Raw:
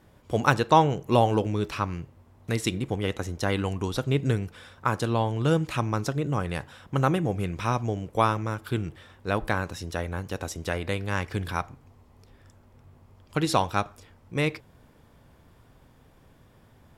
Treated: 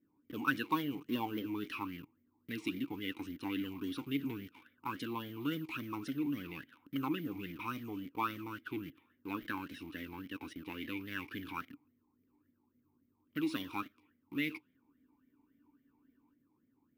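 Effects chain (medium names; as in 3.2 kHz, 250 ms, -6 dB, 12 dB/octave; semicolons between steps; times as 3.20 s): level-controlled noise filter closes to 840 Hz, open at -23 dBFS; treble shelf 2.1 kHz +9.5 dB; in parallel at -3.5 dB: companded quantiser 2-bit; on the sum: saturation -6.5 dBFS, distortion -9 dB; careless resampling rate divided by 3×, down filtered, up zero stuff; spectral freeze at 14.83 s, 1.51 s; talking filter i-u 3.6 Hz; trim -4 dB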